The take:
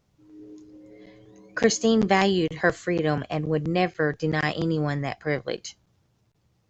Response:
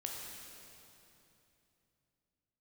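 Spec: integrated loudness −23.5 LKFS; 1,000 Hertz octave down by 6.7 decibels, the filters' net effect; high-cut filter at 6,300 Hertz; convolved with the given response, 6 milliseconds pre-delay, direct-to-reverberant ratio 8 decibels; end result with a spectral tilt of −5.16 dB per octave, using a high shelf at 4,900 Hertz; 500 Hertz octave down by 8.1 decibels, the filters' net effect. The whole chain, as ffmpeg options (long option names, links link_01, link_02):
-filter_complex "[0:a]lowpass=6300,equalizer=frequency=500:width_type=o:gain=-9,equalizer=frequency=1000:width_type=o:gain=-5,highshelf=frequency=4900:gain=-6,asplit=2[link_01][link_02];[1:a]atrim=start_sample=2205,adelay=6[link_03];[link_02][link_03]afir=irnorm=-1:irlink=0,volume=-8dB[link_04];[link_01][link_04]amix=inputs=2:normalize=0,volume=4dB"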